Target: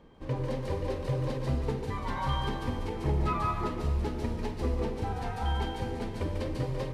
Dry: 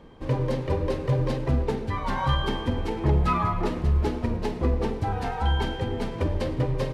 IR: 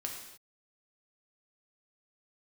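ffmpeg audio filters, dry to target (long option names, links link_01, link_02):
-filter_complex "[0:a]asplit=2[link_01][link_02];[1:a]atrim=start_sample=2205,highshelf=frequency=4300:gain=10.5,adelay=145[link_03];[link_02][link_03]afir=irnorm=-1:irlink=0,volume=-5.5dB[link_04];[link_01][link_04]amix=inputs=2:normalize=0,volume=-7dB"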